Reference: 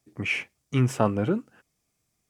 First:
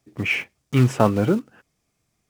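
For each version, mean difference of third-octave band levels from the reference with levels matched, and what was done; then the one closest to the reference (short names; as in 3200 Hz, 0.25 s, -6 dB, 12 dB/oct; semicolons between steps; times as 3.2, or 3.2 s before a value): 2.5 dB: block floating point 5-bit; high shelf 6100 Hz -8 dB; gain +5.5 dB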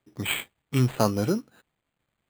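5.0 dB: switching dead time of 0.074 ms; sample-and-hold 8×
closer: first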